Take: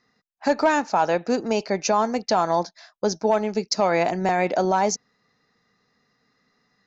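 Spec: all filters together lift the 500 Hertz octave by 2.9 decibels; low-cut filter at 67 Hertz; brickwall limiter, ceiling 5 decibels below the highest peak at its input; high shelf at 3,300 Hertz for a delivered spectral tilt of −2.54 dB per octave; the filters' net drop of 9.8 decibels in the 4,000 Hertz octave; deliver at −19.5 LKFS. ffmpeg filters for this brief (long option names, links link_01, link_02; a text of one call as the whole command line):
ffmpeg -i in.wav -af "highpass=67,equalizer=frequency=500:width_type=o:gain=4,highshelf=frequency=3300:gain=-6,equalizer=frequency=4000:width_type=o:gain=-8,volume=4dB,alimiter=limit=-8.5dB:level=0:latency=1" out.wav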